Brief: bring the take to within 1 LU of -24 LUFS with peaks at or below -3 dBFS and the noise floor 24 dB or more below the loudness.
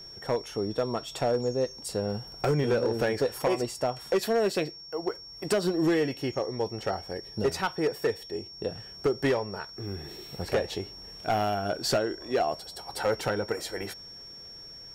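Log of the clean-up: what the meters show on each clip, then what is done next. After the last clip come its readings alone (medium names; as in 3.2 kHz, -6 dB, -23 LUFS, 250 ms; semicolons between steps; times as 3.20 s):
clipped samples 1.5%; clipping level -19.5 dBFS; steady tone 5.5 kHz; tone level -43 dBFS; loudness -30.0 LUFS; peak level -19.5 dBFS; loudness target -24.0 LUFS
-> clip repair -19.5 dBFS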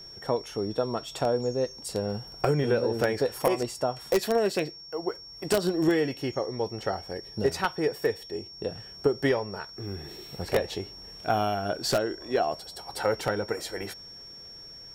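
clipped samples 0.0%; steady tone 5.5 kHz; tone level -43 dBFS
-> band-stop 5.5 kHz, Q 30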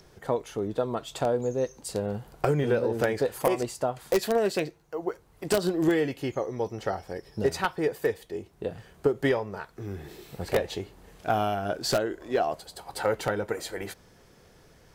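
steady tone not found; loudness -29.0 LUFS; peak level -10.0 dBFS; loudness target -24.0 LUFS
-> trim +5 dB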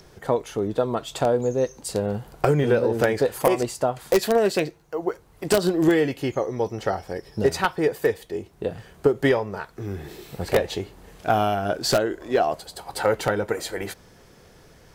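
loudness -24.0 LUFS; peak level -5.0 dBFS; noise floor -52 dBFS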